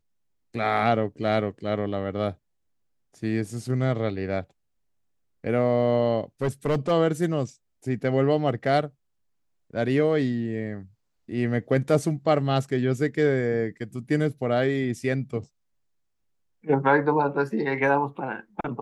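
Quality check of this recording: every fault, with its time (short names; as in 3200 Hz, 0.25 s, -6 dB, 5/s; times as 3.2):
6.42–6.92 clipped -19 dBFS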